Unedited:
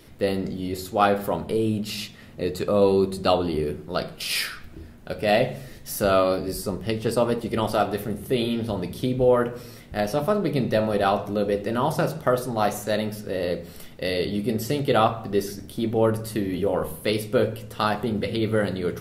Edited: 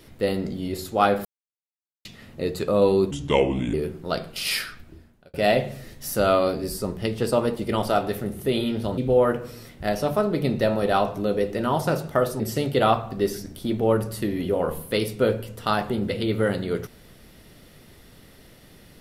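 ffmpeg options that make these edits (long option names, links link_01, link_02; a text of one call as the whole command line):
ffmpeg -i in.wav -filter_complex "[0:a]asplit=8[link_01][link_02][link_03][link_04][link_05][link_06][link_07][link_08];[link_01]atrim=end=1.25,asetpts=PTS-STARTPTS,afade=type=out:start_time=1.246:duration=0.004:curve=hsin[link_09];[link_02]atrim=start=1.25:end=2.05,asetpts=PTS-STARTPTS,volume=0[link_10];[link_03]atrim=start=2.05:end=3.114,asetpts=PTS-STARTPTS,afade=type=in:duration=0.004:curve=hsin[link_11];[link_04]atrim=start=3.11:end=3.58,asetpts=PTS-STARTPTS,asetrate=33075,aresample=44100[link_12];[link_05]atrim=start=3.576:end=5.18,asetpts=PTS-STARTPTS,afade=type=out:start_time=0.874:duration=0.73[link_13];[link_06]atrim=start=5.18:end=8.822,asetpts=PTS-STARTPTS,afade=type=in:duration=0.004:curve=hsin[link_14];[link_07]atrim=start=9.088:end=12.512[link_15];[link_08]atrim=start=14.528[link_16];[link_09][link_10][link_11]concat=n=3:v=0:a=1[link_17];[link_17][link_12]acrossfade=duration=0.004:curve1=hsin:curve2=hsin[link_18];[link_13][link_14]concat=n=2:v=0:a=1[link_19];[link_18][link_19]acrossfade=duration=0.004:curve1=hsin:curve2=hsin[link_20];[link_20][link_15]acrossfade=duration=0.004:curve1=hsin:curve2=hsin[link_21];[link_21][link_16]acrossfade=duration=0.004:curve1=hsin:curve2=hsin" out.wav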